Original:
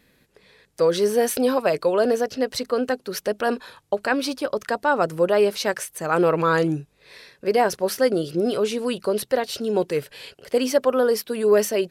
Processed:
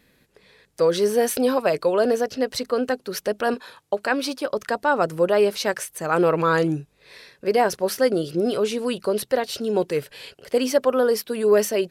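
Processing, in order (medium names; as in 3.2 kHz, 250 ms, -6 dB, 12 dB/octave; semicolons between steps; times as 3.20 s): 3.54–4.53 s: high-pass 180 Hz 6 dB/octave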